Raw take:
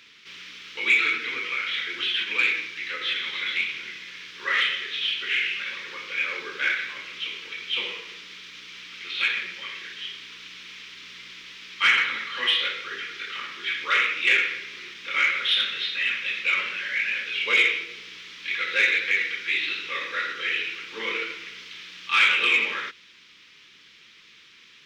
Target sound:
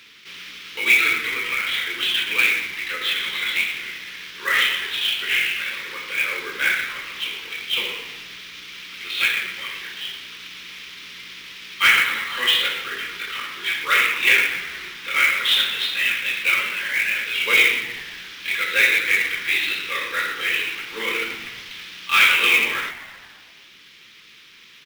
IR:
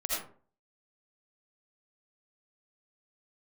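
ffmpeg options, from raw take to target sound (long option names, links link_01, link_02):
-filter_complex "[0:a]asplit=8[link_01][link_02][link_03][link_04][link_05][link_06][link_07][link_08];[link_02]adelay=120,afreqshift=-110,volume=-15.5dB[link_09];[link_03]adelay=240,afreqshift=-220,volume=-19.5dB[link_10];[link_04]adelay=360,afreqshift=-330,volume=-23.5dB[link_11];[link_05]adelay=480,afreqshift=-440,volume=-27.5dB[link_12];[link_06]adelay=600,afreqshift=-550,volume=-31.6dB[link_13];[link_07]adelay=720,afreqshift=-660,volume=-35.6dB[link_14];[link_08]adelay=840,afreqshift=-770,volume=-39.6dB[link_15];[link_01][link_09][link_10][link_11][link_12][link_13][link_14][link_15]amix=inputs=8:normalize=0,acrusher=bits=3:mode=log:mix=0:aa=0.000001,volume=4dB"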